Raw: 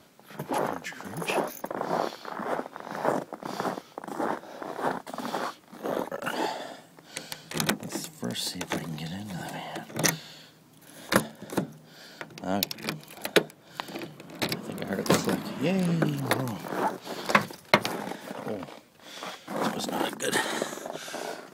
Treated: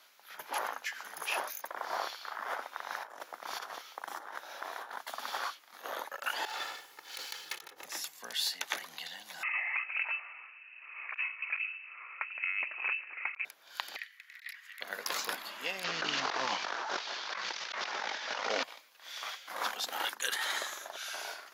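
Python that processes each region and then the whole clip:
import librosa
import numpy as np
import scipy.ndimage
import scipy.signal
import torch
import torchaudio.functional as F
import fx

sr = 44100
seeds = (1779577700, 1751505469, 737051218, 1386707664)

y = fx.chain(x, sr, fx.notch(hz=4800.0, q=24.0),
    fx.over_compress(threshold_db=-36.0, ratio=-1.0), at=(2.62, 5.16))
y = fx.chain(y, sr, fx.lower_of_two(delay_ms=2.3),
    fx.low_shelf(hz=330.0, db=11.5),
    fx.over_compress(threshold_db=-35.0, ratio=-1.0), at=(6.45, 7.85))
y = fx.chain(y, sr, fx.freq_invert(carrier_hz=2800),
    fx.over_compress(threshold_db=-31.0, ratio=-0.5), at=(9.43, 13.45))
y = fx.chain(y, sr, fx.ladder_highpass(hz=1800.0, resonance_pct=80),
    fx.over_compress(threshold_db=-42.0, ratio=-0.5), at=(13.96, 14.81))
y = fx.chain(y, sr, fx.cvsd(bps=32000),
    fx.env_flatten(amount_pct=100), at=(15.84, 18.63))
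y = scipy.signal.sosfilt(scipy.signal.butter(2, 1200.0, 'highpass', fs=sr, output='sos'), y)
y = fx.peak_eq(y, sr, hz=8300.0, db=-14.0, octaves=0.22)
y = fx.over_compress(y, sr, threshold_db=-32.0, ratio=-1.0)
y = F.gain(torch.from_numpy(y), -2.5).numpy()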